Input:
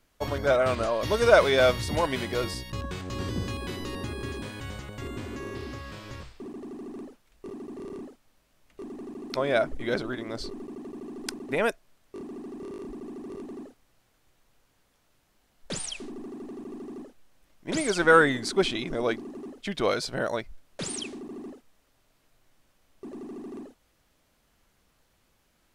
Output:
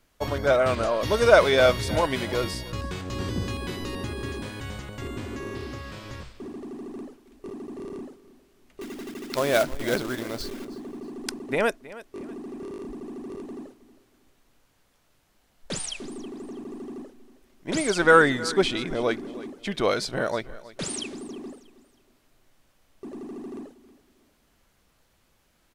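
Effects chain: 8.81–10.65 companded quantiser 4-bit; on a send: feedback echo 0.318 s, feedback 32%, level -18 dB; on the sum: gain +2 dB

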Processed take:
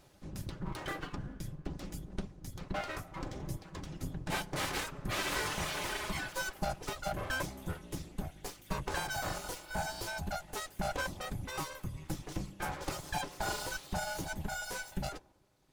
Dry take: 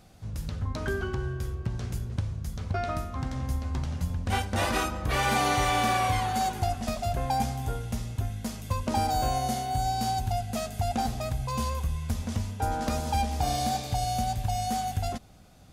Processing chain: reverb RT60 0.90 s, pre-delay 3 ms, DRR 11.5 dB; reverb removal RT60 2 s; full-wave rectifier; notch comb 230 Hz; gain -1.5 dB

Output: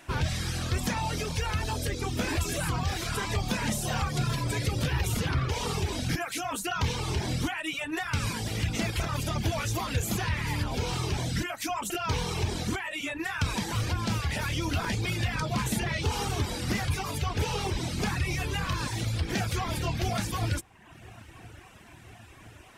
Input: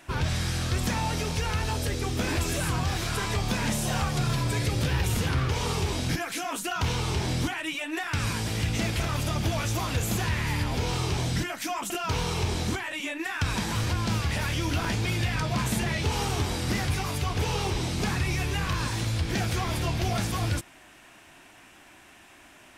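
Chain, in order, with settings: dark delay 1.018 s, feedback 74%, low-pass 2100 Hz, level -22.5 dB; reverb removal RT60 0.84 s

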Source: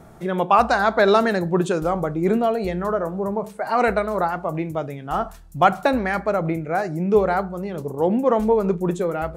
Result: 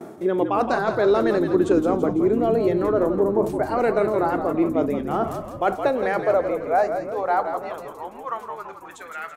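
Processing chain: gate with hold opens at -37 dBFS; low shelf 320 Hz +10.5 dB; reverse; compressor 6:1, threshold -26 dBFS, peak gain reduction 17.5 dB; reverse; high-pass sweep 340 Hz -> 1700 Hz, 5.29–9.15; on a send: frequency-shifting echo 0.167 s, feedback 53%, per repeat -62 Hz, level -7.5 dB; on the sum: gain +4.5 dB

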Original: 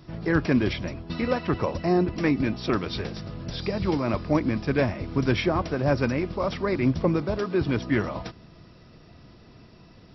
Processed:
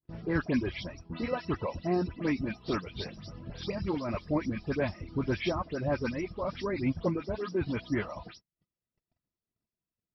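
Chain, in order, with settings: spectral delay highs late, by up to 0.143 s; reverb removal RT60 0.74 s; gate -46 dBFS, range -37 dB; gain -6 dB

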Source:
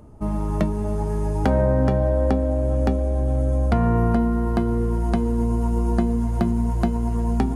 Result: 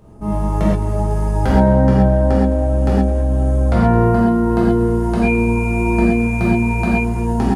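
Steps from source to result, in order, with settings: 5.22–6.91 whine 2400 Hz -23 dBFS; outdoor echo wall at 37 m, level -16 dB; non-linear reverb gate 0.15 s flat, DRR -7.5 dB; gain -2.5 dB

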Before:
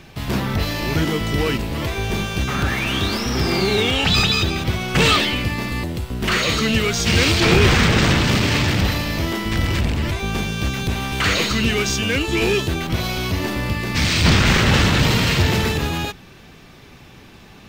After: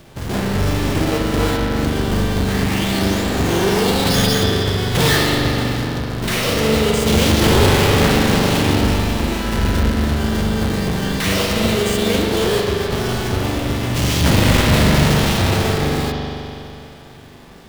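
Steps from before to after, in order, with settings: half-waves squared off; spring tank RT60 2.9 s, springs 41 ms, chirp 45 ms, DRR -0.5 dB; formant shift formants +5 st; gain -6 dB

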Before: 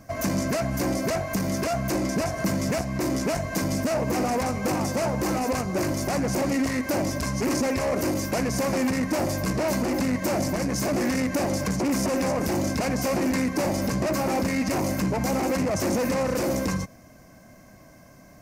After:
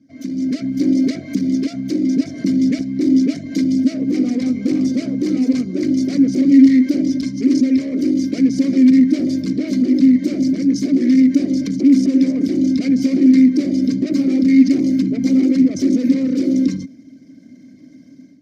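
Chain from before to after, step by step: formant sharpening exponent 1.5; HPF 80 Hz; resonant high shelf 3100 Hz +7.5 dB, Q 3; AGC gain up to 11.5 dB; vowel filter i; gain +7.5 dB

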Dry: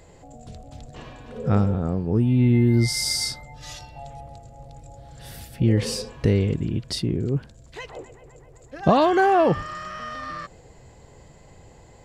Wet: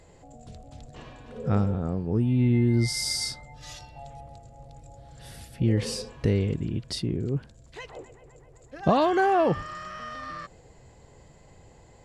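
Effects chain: brick-wall FIR low-pass 12000 Hz; gain -4 dB

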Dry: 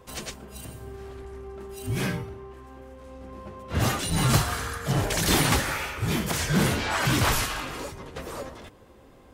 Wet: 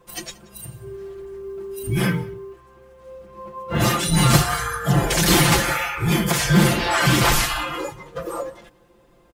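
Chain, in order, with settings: spectral noise reduction 13 dB; comb 5.8 ms, depth 90%; in parallel at -2 dB: compressor, threshold -33 dBFS, peak gain reduction 18.5 dB; on the sum: companded quantiser 8-bit; on a send: echo 0.18 s -22.5 dB; on the sum: ending taper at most 420 dB/s; gain +2.5 dB

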